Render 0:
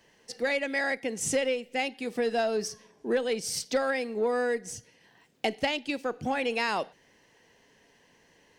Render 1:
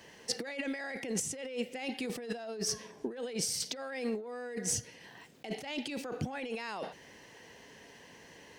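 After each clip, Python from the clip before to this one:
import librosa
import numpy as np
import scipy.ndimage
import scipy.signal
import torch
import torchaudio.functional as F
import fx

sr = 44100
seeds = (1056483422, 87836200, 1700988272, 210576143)

y = scipy.signal.sosfilt(scipy.signal.butter(2, 43.0, 'highpass', fs=sr, output='sos'), x)
y = fx.over_compress(y, sr, threshold_db=-38.0, ratio=-1.0)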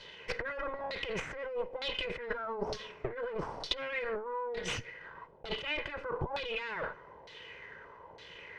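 y = fx.lower_of_two(x, sr, delay_ms=2.0)
y = fx.filter_lfo_lowpass(y, sr, shape='saw_down', hz=1.1, low_hz=740.0, high_hz=4000.0, q=3.6)
y = F.gain(torch.from_numpy(y), 2.0).numpy()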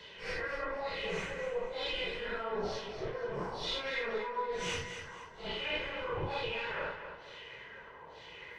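y = fx.phase_scramble(x, sr, seeds[0], window_ms=200)
y = fx.echo_feedback(y, sr, ms=238, feedback_pct=35, wet_db=-9.5)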